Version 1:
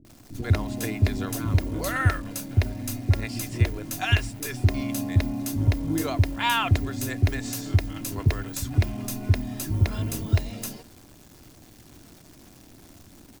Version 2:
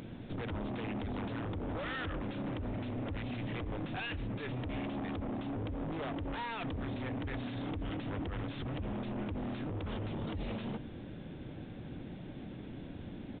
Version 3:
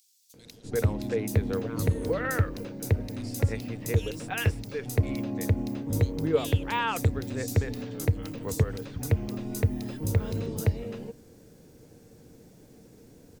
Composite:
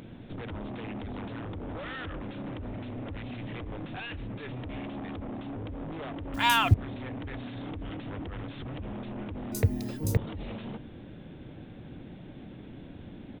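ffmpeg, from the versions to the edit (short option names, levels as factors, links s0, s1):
-filter_complex "[1:a]asplit=3[s0][s1][s2];[s0]atrim=end=6.342[s3];[0:a]atrim=start=6.338:end=6.742[s4];[s1]atrim=start=6.738:end=9.522[s5];[2:a]atrim=start=9.518:end=10.172[s6];[s2]atrim=start=10.168[s7];[s3][s4]acrossfade=d=0.004:c1=hsin:c2=hsin[s8];[s8][s5]acrossfade=d=0.004:c1=hsin:c2=hsin[s9];[s9][s6]acrossfade=d=0.004:c1=hsin:c2=hsin[s10];[s10][s7]acrossfade=d=0.004:c1=hsin:c2=hsin"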